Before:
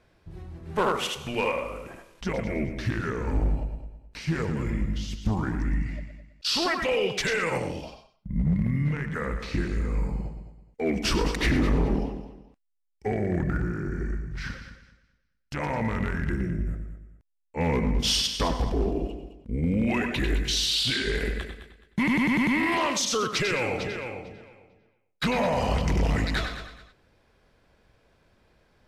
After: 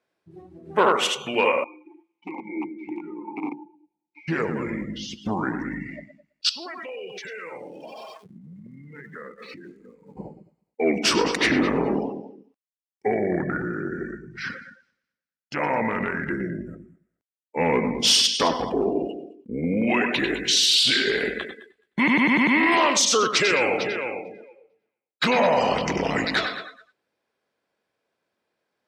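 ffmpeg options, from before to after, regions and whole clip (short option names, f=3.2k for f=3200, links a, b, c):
-filter_complex "[0:a]asettb=1/sr,asplit=3[a][b][c];[a]atrim=end=1.644[d];[b]atrim=start=1.64:end=4.28,asetpts=PTS-STARTPTS,afade=t=in:d=0.004:c=qsin,afade=t=out:st=2.636:d=0.004:c=qsin,aecho=1:1:5.7:0.92,atrim=end_sample=116424,aeval=exprs='(mod(7.08*val(0)+1,2)-1)/7.08':c=same,asplit=3[e][f][g];[e]bandpass=f=300:t=q:w=8,volume=0dB[h];[f]bandpass=f=870:t=q:w=8,volume=-6dB[i];[g]bandpass=f=2.24k:t=q:w=8,volume=-9dB[j];[h][i][j]amix=inputs=3:normalize=0[k];[c]atrim=start=4.276[l];[d][k]acrossfade=d=0.004:c1=hsin:c2=qsin[m];[m][l]acrossfade=d=0.004:c1=qsin:c2=hsin,asettb=1/sr,asplit=3[n][o][p];[n]atrim=end=6.494[q];[o]atrim=start=6.49:end=10.17,asetpts=PTS-STARTPTS,afade=t=in:d=0.004:c=qsin,afade=t=out:st=3.676:d=0.004:c=qsin,aeval=exprs='val(0)+0.5*0.0119*sgn(val(0))':c=same,acompressor=threshold=-40dB:ratio=6:attack=3.2:release=140:knee=1:detection=peak[r];[p]atrim=start=10.166[s];[q][r]acrossfade=d=0.004:c1=hsin:c2=qsin[t];[t][s]acrossfade=d=0.004:c1=qsin:c2=hsin,highpass=270,afftdn=nr=19:nf=-45,equalizer=f=8.8k:t=o:w=0.85:g=2.5,volume=6.5dB"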